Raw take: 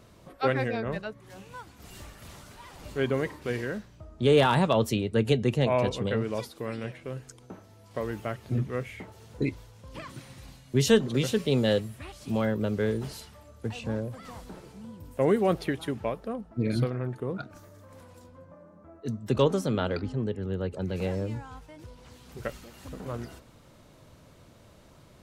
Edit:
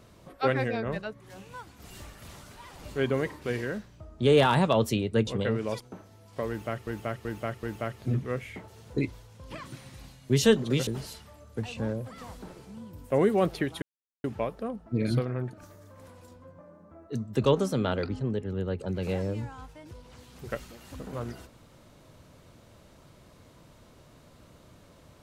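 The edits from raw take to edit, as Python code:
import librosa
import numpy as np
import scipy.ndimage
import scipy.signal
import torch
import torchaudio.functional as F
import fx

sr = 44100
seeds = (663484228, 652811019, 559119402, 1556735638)

y = fx.edit(x, sr, fx.cut(start_s=5.27, length_s=0.66),
    fx.cut(start_s=6.46, length_s=0.92),
    fx.repeat(start_s=8.07, length_s=0.38, count=4),
    fx.cut(start_s=11.31, length_s=1.63),
    fx.insert_silence(at_s=15.89, length_s=0.42),
    fx.cut(start_s=17.18, length_s=0.28), tone=tone)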